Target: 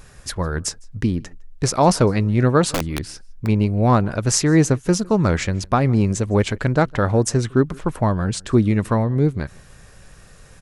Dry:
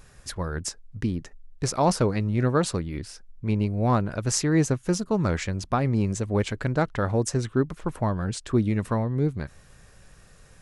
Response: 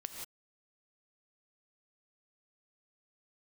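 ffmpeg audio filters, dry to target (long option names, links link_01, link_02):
-filter_complex "[0:a]asplit=2[link_01][link_02];[link_02]adelay=157.4,volume=-26dB,highshelf=frequency=4000:gain=-3.54[link_03];[link_01][link_03]amix=inputs=2:normalize=0,asplit=3[link_04][link_05][link_06];[link_04]afade=type=out:start_time=2.72:duration=0.02[link_07];[link_05]aeval=exprs='(mod(11.2*val(0)+1,2)-1)/11.2':channel_layout=same,afade=type=in:start_time=2.72:duration=0.02,afade=type=out:start_time=3.45:duration=0.02[link_08];[link_06]afade=type=in:start_time=3.45:duration=0.02[link_09];[link_07][link_08][link_09]amix=inputs=3:normalize=0,volume=6.5dB"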